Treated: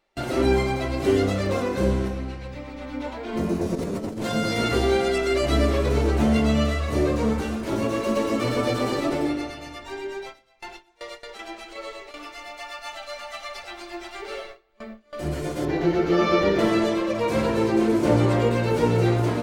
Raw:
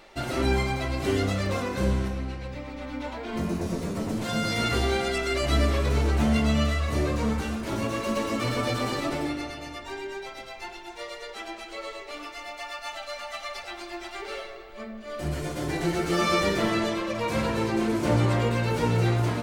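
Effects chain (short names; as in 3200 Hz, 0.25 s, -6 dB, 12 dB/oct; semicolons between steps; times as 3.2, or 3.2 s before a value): gate with hold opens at -28 dBFS; dynamic EQ 400 Hz, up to +7 dB, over -38 dBFS, Q 0.84; 3.75–4.32 negative-ratio compressor -28 dBFS, ratio -0.5; 15.65–16.59 running mean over 5 samples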